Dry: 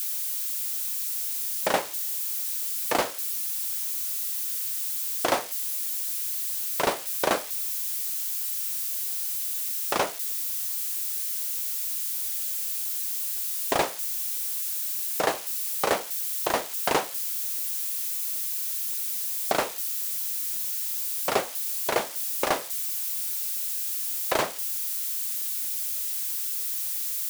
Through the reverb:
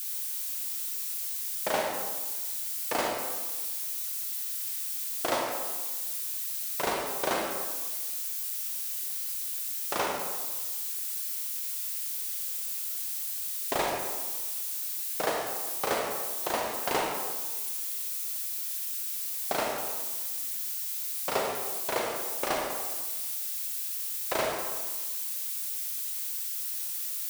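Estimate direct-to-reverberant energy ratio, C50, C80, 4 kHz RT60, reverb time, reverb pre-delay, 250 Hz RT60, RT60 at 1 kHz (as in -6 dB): -0.5 dB, 1.0 dB, 3.5 dB, 0.95 s, 1.3 s, 32 ms, 1.4 s, 1.4 s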